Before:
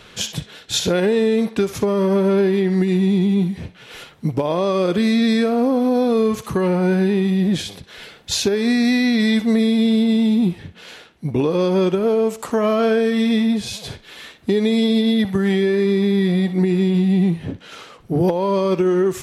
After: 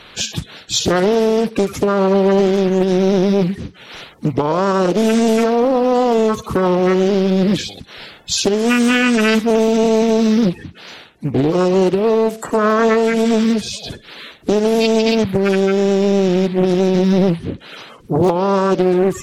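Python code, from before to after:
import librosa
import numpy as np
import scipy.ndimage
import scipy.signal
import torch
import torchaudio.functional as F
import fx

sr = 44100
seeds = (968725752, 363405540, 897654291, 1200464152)

y = fx.spec_quant(x, sr, step_db=30)
y = fx.doppler_dist(y, sr, depth_ms=0.6)
y = y * 10.0 ** (4.0 / 20.0)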